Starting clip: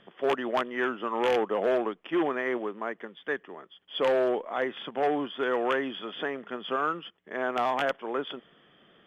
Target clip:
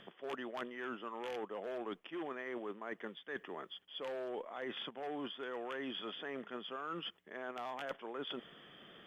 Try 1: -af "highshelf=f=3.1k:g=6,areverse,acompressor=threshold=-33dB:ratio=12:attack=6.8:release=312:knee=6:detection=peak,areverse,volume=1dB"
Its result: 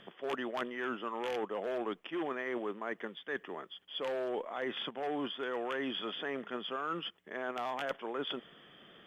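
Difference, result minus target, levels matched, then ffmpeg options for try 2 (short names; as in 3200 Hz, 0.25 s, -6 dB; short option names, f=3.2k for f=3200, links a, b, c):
compressor: peak gain reduction -6 dB
-af "highshelf=f=3.1k:g=6,areverse,acompressor=threshold=-39.5dB:ratio=12:attack=6.8:release=312:knee=6:detection=peak,areverse,volume=1dB"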